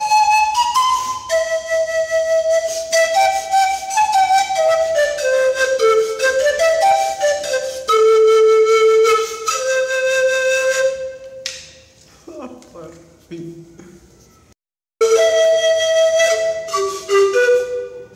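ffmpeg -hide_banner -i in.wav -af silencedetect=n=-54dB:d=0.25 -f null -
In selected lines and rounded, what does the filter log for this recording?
silence_start: 14.53
silence_end: 15.01 | silence_duration: 0.48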